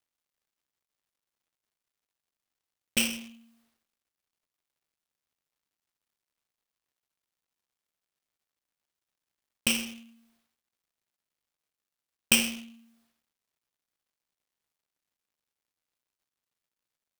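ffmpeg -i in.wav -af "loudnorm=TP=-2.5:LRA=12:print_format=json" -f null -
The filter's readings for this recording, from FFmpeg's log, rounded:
"input_i" : "-27.0",
"input_tp" : "-0.9",
"input_lra" : "7.0",
"input_thresh" : "-39.9",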